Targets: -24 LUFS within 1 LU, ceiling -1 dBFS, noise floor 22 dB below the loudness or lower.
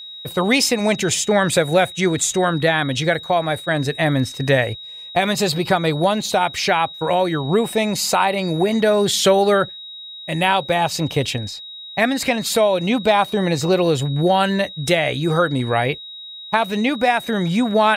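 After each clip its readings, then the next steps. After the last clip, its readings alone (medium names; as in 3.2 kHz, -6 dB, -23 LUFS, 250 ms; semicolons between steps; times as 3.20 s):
steady tone 3.8 kHz; tone level -33 dBFS; loudness -18.5 LUFS; peak level -3.5 dBFS; loudness target -24.0 LUFS
-> band-stop 3.8 kHz, Q 30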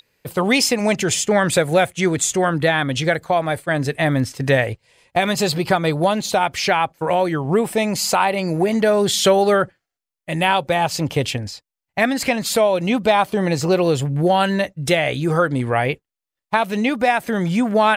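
steady tone not found; loudness -19.0 LUFS; peak level -4.0 dBFS; loudness target -24.0 LUFS
-> trim -5 dB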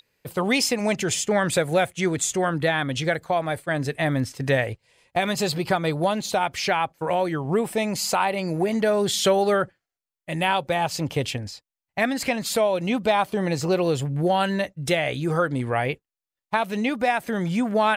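loudness -24.0 LUFS; peak level -9.0 dBFS; noise floor -90 dBFS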